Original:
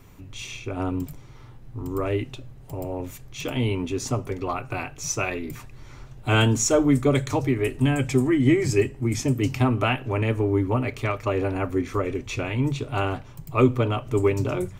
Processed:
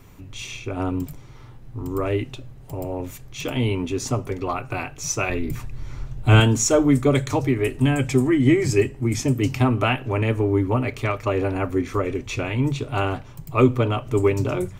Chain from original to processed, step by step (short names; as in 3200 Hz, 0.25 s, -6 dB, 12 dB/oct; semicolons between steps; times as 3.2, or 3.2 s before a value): 5.29–6.4 low shelf 160 Hz +11 dB; gain +2 dB